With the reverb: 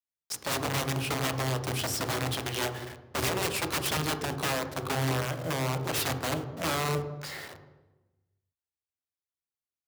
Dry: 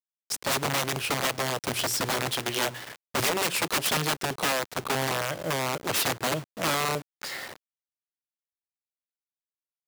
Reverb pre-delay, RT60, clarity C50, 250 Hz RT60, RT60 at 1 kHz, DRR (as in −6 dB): 3 ms, 1.1 s, 9.5 dB, 1.4 s, 1.0 s, 7.0 dB